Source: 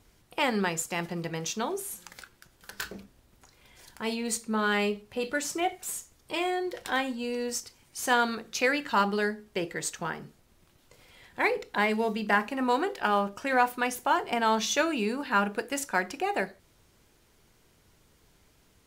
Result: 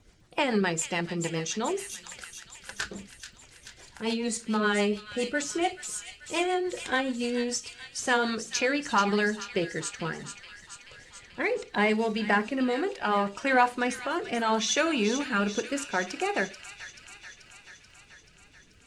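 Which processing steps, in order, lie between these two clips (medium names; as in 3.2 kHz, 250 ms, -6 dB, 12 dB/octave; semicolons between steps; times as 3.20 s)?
coarse spectral quantiser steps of 15 dB; low-pass 8.9 kHz 24 dB/octave; in parallel at -3 dB: peak limiter -20 dBFS, peak gain reduction 8.5 dB; on the sum: rotary cabinet horn 7 Hz, later 0.7 Hz, at 7.96 s; crackle 27 per s -57 dBFS; on a send: feedback echo behind a high-pass 434 ms, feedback 68%, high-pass 2.3 kHz, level -8 dB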